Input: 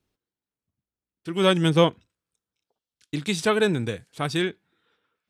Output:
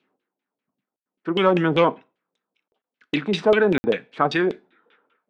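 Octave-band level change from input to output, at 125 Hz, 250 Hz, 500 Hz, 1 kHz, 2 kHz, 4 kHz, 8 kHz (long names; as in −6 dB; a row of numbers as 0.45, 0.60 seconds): −3.0 dB, +2.0 dB, +4.0 dB, +5.5 dB, +3.5 dB, −2.5 dB, below −10 dB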